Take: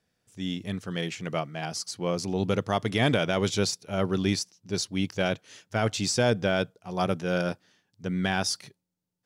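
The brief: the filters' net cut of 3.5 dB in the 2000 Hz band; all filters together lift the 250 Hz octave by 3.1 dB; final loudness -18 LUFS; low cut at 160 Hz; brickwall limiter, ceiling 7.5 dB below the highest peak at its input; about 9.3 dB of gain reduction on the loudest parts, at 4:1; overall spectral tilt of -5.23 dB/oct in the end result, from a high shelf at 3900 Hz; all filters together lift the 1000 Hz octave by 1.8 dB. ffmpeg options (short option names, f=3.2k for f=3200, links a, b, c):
-af "highpass=160,equalizer=f=250:t=o:g=6,equalizer=f=1k:t=o:g=4,equalizer=f=2k:t=o:g=-5,highshelf=f=3.9k:g=-7.5,acompressor=threshold=-29dB:ratio=4,volume=18dB,alimiter=limit=-5.5dB:level=0:latency=1"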